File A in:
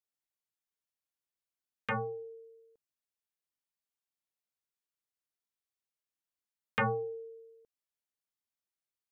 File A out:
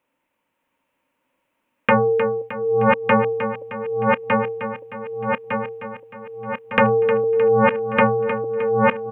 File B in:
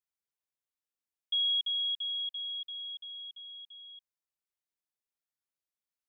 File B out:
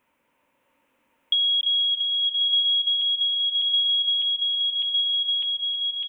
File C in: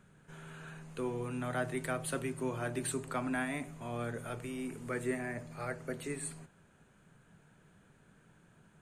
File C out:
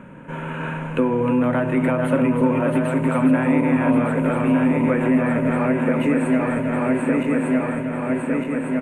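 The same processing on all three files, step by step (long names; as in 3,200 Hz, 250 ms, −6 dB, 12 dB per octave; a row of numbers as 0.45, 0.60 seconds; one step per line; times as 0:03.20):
feedback delay that plays each chunk backwards 603 ms, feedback 73%, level −4.5 dB
in parallel at +3 dB: brickwall limiter −31.5 dBFS
on the sum: downward compressor 10 to 1, threshold −32 dBFS
high shelf with overshoot 3,400 Hz −9.5 dB, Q 3
hollow resonant body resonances 270/530/920 Hz, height 16 dB, ringing for 30 ms
on a send: repeating echo 309 ms, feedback 53%, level −10 dB
on the sum: loudness normalisation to −20 LKFS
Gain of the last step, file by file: +9.5, +15.0, +5.5 decibels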